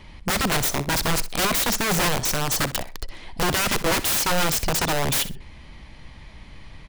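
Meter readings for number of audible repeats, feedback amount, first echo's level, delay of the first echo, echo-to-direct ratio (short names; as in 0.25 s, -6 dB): 2, 22%, -15.0 dB, 63 ms, -15.0 dB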